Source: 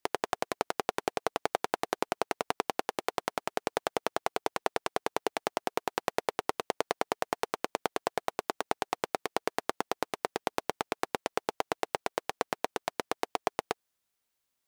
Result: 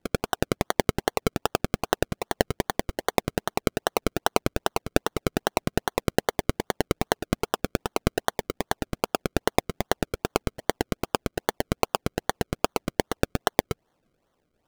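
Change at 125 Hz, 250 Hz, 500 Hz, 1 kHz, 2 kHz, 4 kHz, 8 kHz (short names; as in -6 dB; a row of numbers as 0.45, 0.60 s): +19.5, +11.5, +6.0, +3.0, +5.0, +6.5, +7.5 dB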